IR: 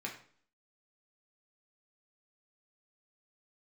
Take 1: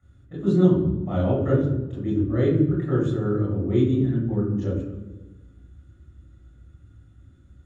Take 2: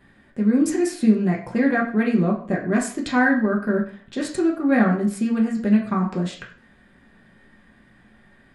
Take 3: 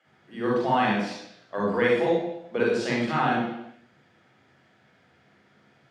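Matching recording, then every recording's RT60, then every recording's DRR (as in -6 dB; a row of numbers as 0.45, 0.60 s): 2; 1.2 s, 0.50 s, not exponential; -8.0, -2.0, -4.5 dB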